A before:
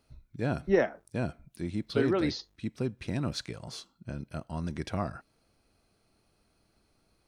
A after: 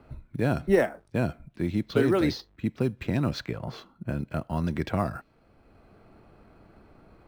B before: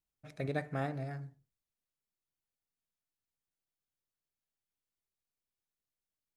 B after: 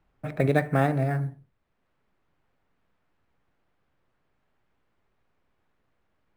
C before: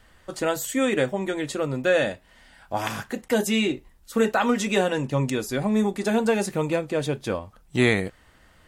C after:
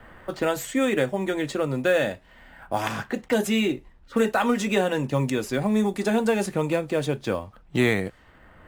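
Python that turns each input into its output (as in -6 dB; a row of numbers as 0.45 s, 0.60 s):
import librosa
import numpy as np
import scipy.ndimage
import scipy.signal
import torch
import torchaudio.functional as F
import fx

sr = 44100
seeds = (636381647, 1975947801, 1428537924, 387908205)

p1 = fx.vibrato(x, sr, rate_hz=1.5, depth_cents=6.2)
p2 = fx.env_lowpass(p1, sr, base_hz=1700.0, full_db=-22.5)
p3 = fx.sample_hold(p2, sr, seeds[0], rate_hz=10000.0, jitter_pct=0)
p4 = p2 + F.gain(torch.from_numpy(p3), -12.0).numpy()
p5 = fx.band_squash(p4, sr, depth_pct=40)
y = librosa.util.normalize(p5) * 10.0 ** (-9 / 20.0)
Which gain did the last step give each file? +3.5 dB, +11.5 dB, -2.0 dB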